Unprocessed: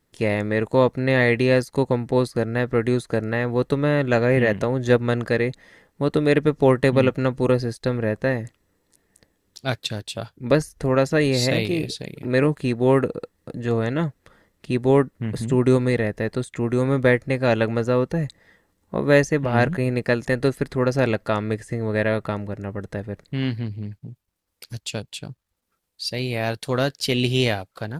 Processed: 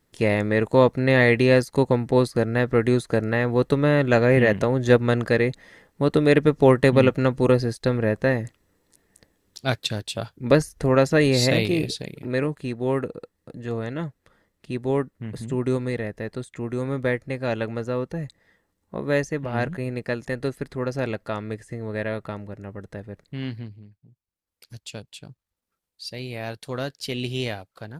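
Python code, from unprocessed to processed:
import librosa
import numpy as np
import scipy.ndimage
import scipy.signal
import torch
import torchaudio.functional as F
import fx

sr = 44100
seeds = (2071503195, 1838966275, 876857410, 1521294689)

y = fx.gain(x, sr, db=fx.line((11.93, 1.0), (12.49, -6.5), (23.6, -6.5), (23.94, -18.5), (24.77, -7.5)))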